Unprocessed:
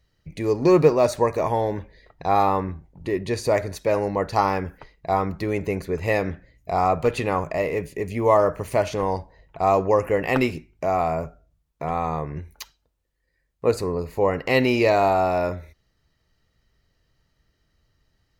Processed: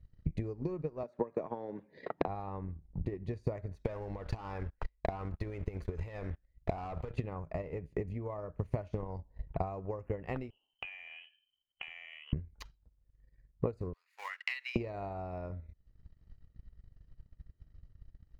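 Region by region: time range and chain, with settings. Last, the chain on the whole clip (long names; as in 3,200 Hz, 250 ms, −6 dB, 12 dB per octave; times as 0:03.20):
0:01.03–0:02.28: high-pass filter 190 Hz 24 dB per octave + high-shelf EQ 4,000 Hz −12 dB + multiband upward and downward compressor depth 100%
0:03.85–0:07.11: parametric band 180 Hz −13 dB 2.4 octaves + leveller curve on the samples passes 3 + downward compressor 10 to 1, threshold −24 dBFS
0:10.50–0:12.33: downward compressor 5 to 1, threshold −37 dBFS + voice inversion scrambler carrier 3,100 Hz
0:13.93–0:14.76: mu-law and A-law mismatch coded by A + inverse Chebyshev high-pass filter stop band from 280 Hz, stop band 80 dB + multiband upward and downward compressor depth 40%
whole clip: RIAA equalisation playback; downward compressor 6 to 1, threshold −31 dBFS; transient designer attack +11 dB, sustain −9 dB; level −8.5 dB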